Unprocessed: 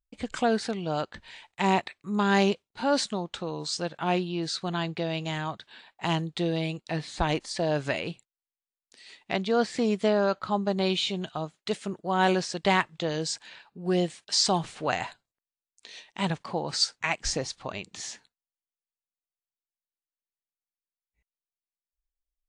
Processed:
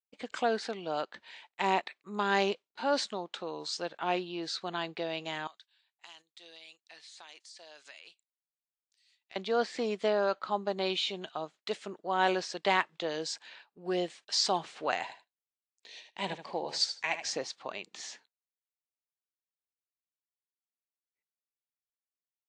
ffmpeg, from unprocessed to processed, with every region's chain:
-filter_complex "[0:a]asettb=1/sr,asplit=3[a][b][c];[a]atrim=end=5.474[d];[b]atrim=start=5.47:end=9.36,asetpts=PTS-STARTPTS,afade=t=in:d=0.004:c=qsin,afade=t=out:st=3.886:d=0.004:c=qsin,aderivative,acompressor=threshold=-42dB:ratio=6:attack=3.2:release=140:knee=1:detection=peak[e];[c]atrim=start=9.356[f];[d][e]acrossfade=d=0.004:c1=hsin:c2=qsin[g];[g][f]acrossfade=d=0.004:c1=qsin:c2=hsin,asettb=1/sr,asplit=3[h][i][j];[h]atrim=end=15.014[k];[i]atrim=start=15.01:end=17.29,asetpts=PTS-STARTPTS,afade=t=in:d=0.004:c=qsin,afade=t=out:st=2.276:d=0.004:c=qsin,equalizer=f=1.3k:t=o:w=0.4:g=-10.5,aecho=1:1:77|154:0.316|0.0506,atrim=end_sample=100548[l];[j]atrim=start=17.286[m];[k][l]acrossfade=d=0.004:c1=hsin:c2=qsin[n];[n][m]acrossfade=d=0.004:c1=qsin:c2=hsin,highpass=340,agate=range=-10dB:threshold=-52dB:ratio=16:detection=peak,lowpass=6.1k,volume=-3dB"

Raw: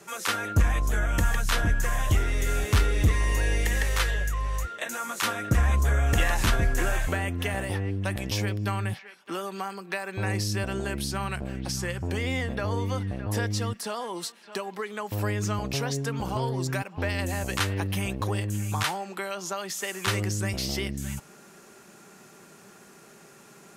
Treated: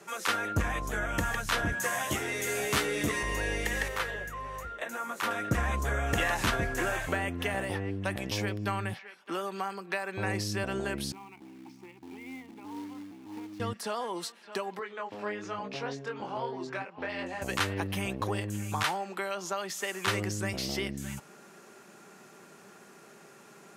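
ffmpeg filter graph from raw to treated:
-filter_complex "[0:a]asettb=1/sr,asplit=3[a][b][c];[a]atrim=end=1.724[d];[b]atrim=start=1.72:end=3.23,asetpts=PTS-STARTPTS,afade=t=in:d=0.004:c=qsin,afade=t=out:st=1.506:d=0.004:c=qsin,highpass=160,equalizer=f=11k:t=o:w=1.6:g=6,asplit=2[e][f];[f]adelay=14,volume=-3dB[g];[e][g]amix=inputs=2:normalize=0,atrim=end_sample=66591[h];[c]atrim=start=3.226[i];[d][h]acrossfade=d=0.004:c1=hsin:c2=qsin[j];[j][i]acrossfade=d=0.004:c1=qsin:c2=hsin,asettb=1/sr,asplit=3[k][l][m];[k]atrim=end=3.884[n];[l]atrim=start=3.88:end=5.31,asetpts=PTS-STARTPTS,afade=t=in:d=0.004:c=qsin,afade=t=out:st=1.426:d=0.004:c=qsin,equalizer=f=5.9k:w=0.38:g=-7.5,bandreject=f=50:t=h:w=6,bandreject=f=100:t=h:w=6,bandreject=f=150:t=h:w=6,bandreject=f=200:t=h:w=6,bandreject=f=250:t=h:w=6,bandreject=f=300:t=h:w=6,bandreject=f=350:t=h:w=6[o];[m]atrim=start=5.306[p];[n][o]acrossfade=d=0.004:c1=hsin:c2=qsin[q];[q][p]acrossfade=d=0.004:c1=qsin:c2=hsin,asettb=1/sr,asplit=3[r][s][t];[r]atrim=end=11.124[u];[s]atrim=start=11.12:end=13.6,asetpts=PTS-STARTPTS,afade=t=in:d=0.004:c=qsin,afade=t=out:st=2.476:d=0.004:c=qsin,asplit=3[v][w][x];[v]bandpass=f=300:t=q:w=8,volume=0dB[y];[w]bandpass=f=870:t=q:w=8,volume=-6dB[z];[x]bandpass=f=2.24k:t=q:w=8,volume=-9dB[aa];[y][z][aa]amix=inputs=3:normalize=0,acrusher=bits=3:mode=log:mix=0:aa=0.000001[ab];[t]atrim=start=13.596[ac];[u][ab]acrossfade=d=0.004:c1=hsin:c2=qsin[ad];[ad][ac]acrossfade=d=0.004:c1=qsin:c2=hsin,asettb=1/sr,asplit=3[ae][af][ag];[ae]atrim=end=14.794[ah];[af]atrim=start=14.79:end=17.42,asetpts=PTS-STARTPTS,afade=t=in:d=0.004:c=qsin,afade=t=out:st=2.626:d=0.004:c=qsin,flanger=delay=20:depth=4.1:speed=1.1,asoftclip=type=hard:threshold=-21dB,highpass=220,lowpass=4.1k[ai];[ag]atrim=start=17.416[aj];[ah][ai]acrossfade=d=0.004:c1=hsin:c2=qsin[ak];[ak][aj]acrossfade=d=0.004:c1=qsin:c2=hsin,highpass=f=210:p=1,highshelf=f=3.9k:g=-6"

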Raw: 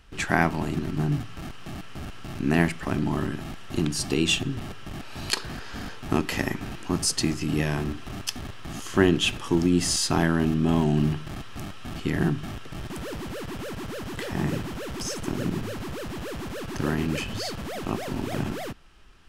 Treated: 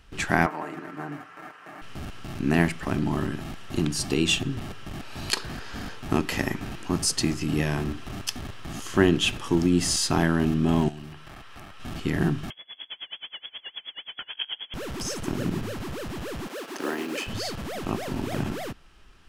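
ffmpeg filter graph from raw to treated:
-filter_complex "[0:a]asettb=1/sr,asplit=3[a][b][c];[a]atrim=end=0.464[d];[b]atrim=start=0.46:end=1.82,asetpts=PTS-STARTPTS,afade=t=in:d=0.004:c=qsin,afade=t=out:st=1.356:d=0.004:c=qsin,highpass=470,highshelf=f=2.5k:t=q:w=1.5:g=-11,aecho=1:1:6.6:0.47,atrim=end_sample=59976[e];[c]atrim=start=1.816[f];[d][e]acrossfade=d=0.004:c1=hsin:c2=qsin[g];[g][f]acrossfade=d=0.004:c1=qsin:c2=hsin,asettb=1/sr,asplit=3[h][i][j];[h]atrim=end=10.884[k];[i]atrim=start=10.88:end=11.8,asetpts=PTS-STARTPTS,afade=t=in:d=0.004:c=qsin,afade=t=out:st=0.916:d=0.004:c=qsin,equalizer=f=230:t=o:w=2.3:g=-10.5,bandreject=f=6.7k:w=25,acrossover=split=150|2700[l][m][n];[l]acompressor=threshold=-47dB:ratio=4[o];[m]acompressor=threshold=-40dB:ratio=4[p];[n]acompressor=threshold=-56dB:ratio=4[q];[o][p][q]amix=inputs=3:normalize=0[r];[j]atrim=start=11.796[s];[k][r]acrossfade=d=0.004:c1=hsin:c2=qsin[t];[t][s]acrossfade=d=0.004:c1=qsin:c2=hsin,asettb=1/sr,asplit=3[u][v][w];[u]atrim=end=12.504[x];[v]atrim=start=12.5:end=14.74,asetpts=PTS-STARTPTS,afade=t=in:d=0.004:c=qsin,afade=t=out:st=2.236:d=0.004:c=qsin,lowpass=f=2.9k:t=q:w=0.5098,lowpass=f=2.9k:t=q:w=0.6013,lowpass=f=2.9k:t=q:w=0.9,lowpass=f=2.9k:t=q:w=2.563,afreqshift=-3400,aeval=exprs='val(0)*pow(10,-29*(0.5-0.5*cos(2*PI*9.4*n/s))/20)':c=same[y];[w]atrim=start=14.736[z];[x][y]acrossfade=d=0.004:c1=hsin:c2=qsin[aa];[aa][z]acrossfade=d=0.004:c1=qsin:c2=hsin,asettb=1/sr,asplit=3[ab][ac][ad];[ab]atrim=end=16.474[ae];[ac]atrim=start=16.47:end=17.27,asetpts=PTS-STARTPTS,afade=t=in:d=0.004:c=qsin,afade=t=out:st=0.796:d=0.004:c=qsin,highpass=f=290:w=0.5412,highpass=f=290:w=1.3066,acrusher=bits=6:mode=log:mix=0:aa=0.000001[af];[ad]atrim=start=17.266[ag];[ae][af]acrossfade=d=0.004:c1=hsin:c2=qsin[ah];[ah][ag]acrossfade=d=0.004:c1=qsin:c2=hsin"

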